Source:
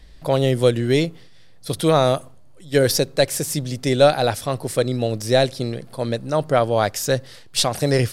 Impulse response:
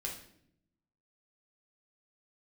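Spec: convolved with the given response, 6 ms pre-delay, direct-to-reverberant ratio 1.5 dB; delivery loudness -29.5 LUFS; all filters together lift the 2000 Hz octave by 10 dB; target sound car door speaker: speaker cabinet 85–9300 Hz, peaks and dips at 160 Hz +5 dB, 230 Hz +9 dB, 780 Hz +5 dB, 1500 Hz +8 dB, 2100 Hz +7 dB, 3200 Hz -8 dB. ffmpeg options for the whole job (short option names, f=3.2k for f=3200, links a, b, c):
-filter_complex "[0:a]equalizer=f=2k:t=o:g=4.5,asplit=2[a][b];[1:a]atrim=start_sample=2205,adelay=6[c];[b][c]afir=irnorm=-1:irlink=0,volume=-2dB[d];[a][d]amix=inputs=2:normalize=0,highpass=85,equalizer=f=160:t=q:w=4:g=5,equalizer=f=230:t=q:w=4:g=9,equalizer=f=780:t=q:w=4:g=5,equalizer=f=1.5k:t=q:w=4:g=8,equalizer=f=2.1k:t=q:w=4:g=7,equalizer=f=3.2k:t=q:w=4:g=-8,lowpass=f=9.3k:w=0.5412,lowpass=f=9.3k:w=1.3066,volume=-14.5dB"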